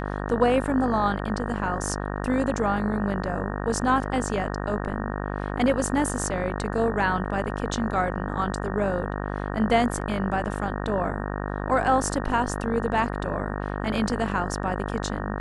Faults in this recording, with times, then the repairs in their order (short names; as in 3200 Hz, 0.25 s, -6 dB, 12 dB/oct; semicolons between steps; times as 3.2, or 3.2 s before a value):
buzz 50 Hz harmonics 37 -30 dBFS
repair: de-hum 50 Hz, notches 37